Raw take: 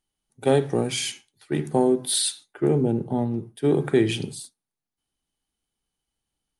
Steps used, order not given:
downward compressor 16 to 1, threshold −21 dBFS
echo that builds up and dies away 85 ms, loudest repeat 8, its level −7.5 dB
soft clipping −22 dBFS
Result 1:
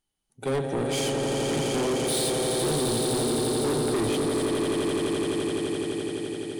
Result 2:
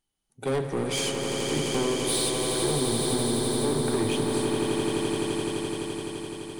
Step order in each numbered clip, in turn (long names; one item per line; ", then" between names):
echo that builds up and dies away, then soft clipping, then downward compressor
soft clipping, then echo that builds up and dies away, then downward compressor